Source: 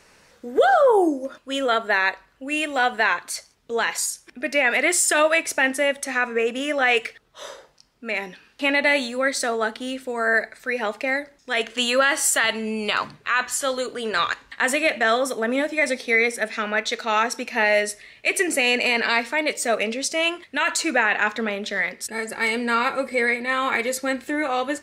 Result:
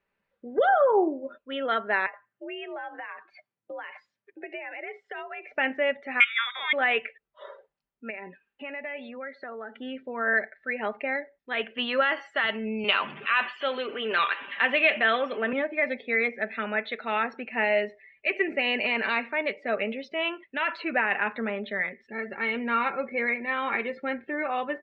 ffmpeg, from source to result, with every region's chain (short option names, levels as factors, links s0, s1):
-filter_complex "[0:a]asettb=1/sr,asplit=3[s0][s1][s2];[s0]atrim=end=2.064[s3];[s1]atrim=start=2.06:end=5.52,asetpts=PTS-STARTPTS,afade=t=in:d=0.004:c=qsin,afade=t=out:st=3.456:d=0.004:c=qsin,aemphasis=mode=reproduction:type=50fm,acompressor=threshold=0.0398:ratio=10:attack=3.2:release=140:knee=1:detection=peak,afreqshift=69[s4];[s2]atrim=start=5.516[s5];[s3][s4]acrossfade=d=0.004:c1=hsin:c2=qsin[s6];[s6][s5]acrossfade=d=0.004:c1=qsin:c2=hsin,asettb=1/sr,asplit=3[s7][s8][s9];[s7]atrim=end=6.204[s10];[s8]atrim=start=6.2:end=6.73,asetpts=PTS-STARTPTS,afade=t=in:d=0.004:c=qsin,afade=t=out:st=0.526:d=0.004:c=qsin,equalizer=f=1700:t=o:w=0.64:g=14,lowpass=f=3300:t=q:w=0.5098,lowpass=f=3300:t=q:w=0.6013,lowpass=f=3300:t=q:w=0.9,lowpass=f=3300:t=q:w=2.563,afreqshift=-3900[s11];[s9]atrim=start=6.726[s12];[s10][s11]acrossfade=d=0.004:c1=hsin:c2=qsin[s13];[s13][s12]acrossfade=d=0.004:c1=qsin:c2=hsin,asettb=1/sr,asplit=3[s14][s15][s16];[s14]atrim=end=8.104[s17];[s15]atrim=start=8.1:end=9.78,asetpts=PTS-STARTPTS,afade=t=in:d=0.004:c=qsin,afade=t=out:st=1.676:d=0.004:c=qsin,bass=f=250:g=-4,treble=f=4000:g=-7,acompressor=threshold=0.0282:ratio=3:attack=3.2:release=140:knee=1:detection=peak[s18];[s16]atrim=start=9.776[s19];[s17][s18]acrossfade=d=0.004:c1=hsin:c2=qsin[s20];[s20][s19]acrossfade=d=0.004:c1=qsin:c2=hsin,asettb=1/sr,asplit=3[s21][s22][s23];[s21]atrim=end=12.844[s24];[s22]atrim=start=12.84:end=15.53,asetpts=PTS-STARTPTS,afade=t=in:d=0.004:c=qsin,afade=t=out:st=2.686:d=0.004:c=qsin,aeval=exprs='val(0)+0.5*0.0299*sgn(val(0))':c=same,highpass=230,equalizer=f=2800:t=o:w=0.66:g=8[s25];[s23]atrim=start=15.526[s26];[s24][s25]acrossfade=d=0.004:c1=hsin:c2=qsin[s27];[s27][s26]acrossfade=d=0.004:c1=qsin:c2=hsin,lowpass=f=3200:w=0.5412,lowpass=f=3200:w=1.3066,aecho=1:1:5.1:0.31,afftdn=nr=20:nf=-40,volume=0.531"